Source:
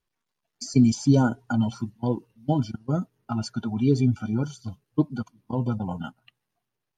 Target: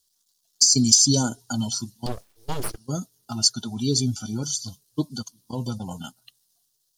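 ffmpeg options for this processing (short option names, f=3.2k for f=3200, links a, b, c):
-filter_complex "[0:a]highshelf=f=6.1k:g=-7,aexciter=amount=13.9:drive=8.5:freq=3.7k,asettb=1/sr,asplit=3[a][b][c];[a]atrim=end=2.064[d];[b]atrim=start=2.06:end=2.78,asetpts=PTS-STARTPTS,afade=t=in:d=0.004:c=qsin,afade=t=out:st=0.716:d=0.004:c=qsin,aeval=exprs='abs(val(0))':c=same[e];[c]atrim=start=2.776[f];[d][e]acrossfade=d=0.004:c1=hsin:c2=qsin[g];[g][f]acrossfade=d=0.004:c1=qsin:c2=hsin,volume=-3.5dB"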